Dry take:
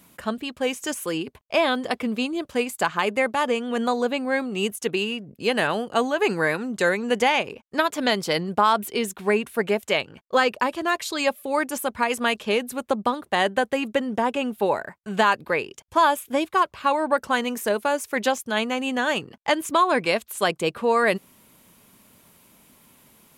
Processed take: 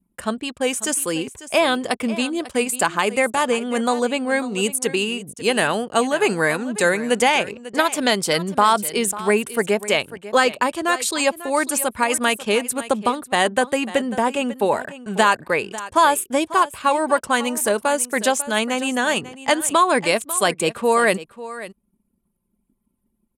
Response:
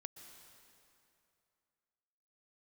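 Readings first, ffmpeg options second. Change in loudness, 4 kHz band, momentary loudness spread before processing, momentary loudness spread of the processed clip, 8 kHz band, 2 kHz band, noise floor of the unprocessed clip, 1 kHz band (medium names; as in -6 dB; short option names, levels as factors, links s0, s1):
+3.5 dB, +4.0 dB, 6 LU, 6 LU, +12.0 dB, +3.5 dB, -58 dBFS, +3.0 dB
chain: -filter_complex "[0:a]anlmdn=0.0398,equalizer=f=8800:t=o:w=0.65:g=12.5,asplit=2[s0][s1];[s1]aecho=0:1:545:0.168[s2];[s0][s2]amix=inputs=2:normalize=0,volume=1.41"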